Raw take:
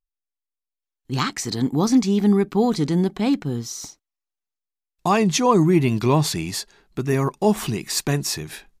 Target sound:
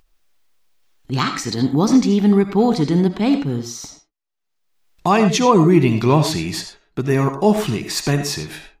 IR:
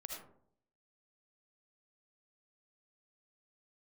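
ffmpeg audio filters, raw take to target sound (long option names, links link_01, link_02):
-filter_complex "[0:a]agate=range=-13dB:threshold=-46dB:ratio=16:detection=peak,acompressor=mode=upward:threshold=-37dB:ratio=2.5,asplit=2[link_01][link_02];[1:a]atrim=start_sample=2205,atrim=end_sample=6174,lowpass=6400[link_03];[link_02][link_03]afir=irnorm=-1:irlink=0,volume=3.5dB[link_04];[link_01][link_04]amix=inputs=2:normalize=0,volume=-1.5dB"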